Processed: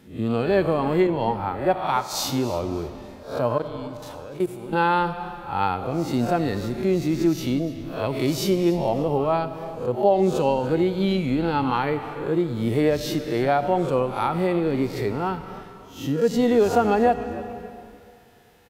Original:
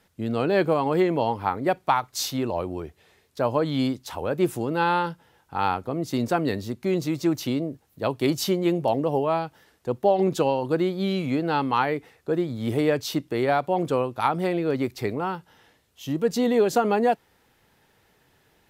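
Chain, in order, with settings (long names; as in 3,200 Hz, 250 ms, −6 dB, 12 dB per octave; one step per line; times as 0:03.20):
peak hold with a rise ahead of every peak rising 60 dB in 0.36 s
0:03.58–0:04.73: output level in coarse steps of 21 dB
on a send at −14 dB: convolution reverb RT60 2.4 s, pre-delay 40 ms
on the sum: harmonic and percussive parts rebalanced percussive −12 dB
in parallel at +2 dB: downward compressor, threshold −32 dBFS, peak gain reduction 16 dB
on the sum: echo with shifted repeats 290 ms, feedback 33%, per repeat −150 Hz, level −17.5 dB
0:01.07–0:02.13: multiband upward and downward expander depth 70%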